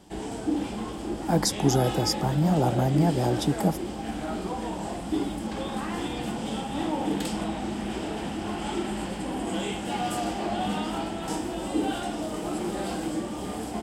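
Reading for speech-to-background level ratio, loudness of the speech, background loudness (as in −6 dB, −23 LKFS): 6.0 dB, −25.0 LKFS, −31.0 LKFS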